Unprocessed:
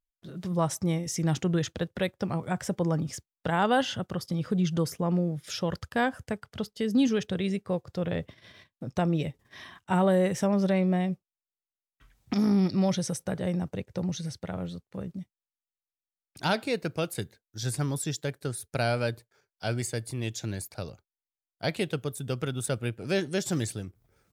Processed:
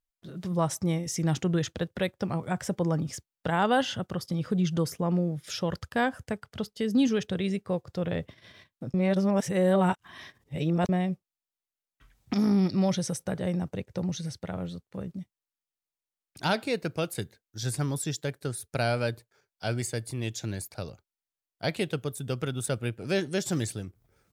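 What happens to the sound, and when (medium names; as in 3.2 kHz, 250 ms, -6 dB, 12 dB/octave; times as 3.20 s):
8.94–10.89 s: reverse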